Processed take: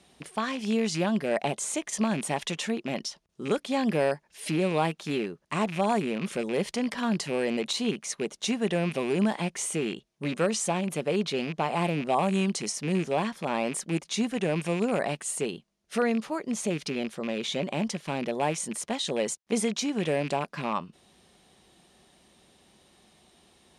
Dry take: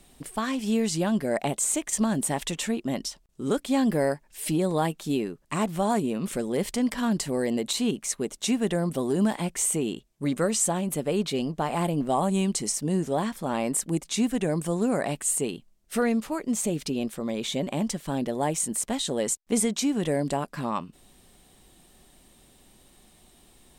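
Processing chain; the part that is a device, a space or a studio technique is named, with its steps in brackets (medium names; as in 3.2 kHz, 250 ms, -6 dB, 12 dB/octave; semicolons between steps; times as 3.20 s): car door speaker with a rattle (rattle on loud lows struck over -34 dBFS, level -27 dBFS; cabinet simulation 97–9400 Hz, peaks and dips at 120 Hz -6 dB, 270 Hz -6 dB, 7.9 kHz -10 dB)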